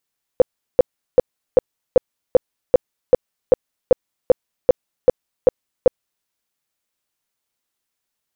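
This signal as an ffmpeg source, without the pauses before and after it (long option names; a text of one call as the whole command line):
ffmpeg -f lavfi -i "aevalsrc='0.562*sin(2*PI*507*mod(t,0.39))*lt(mod(t,0.39),9/507)':duration=5.85:sample_rate=44100" out.wav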